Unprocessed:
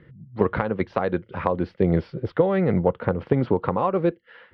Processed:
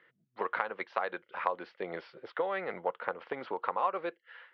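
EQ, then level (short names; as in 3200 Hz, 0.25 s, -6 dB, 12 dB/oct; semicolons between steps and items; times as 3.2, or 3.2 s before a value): HPF 910 Hz 12 dB/oct; air absorption 83 m; -2.0 dB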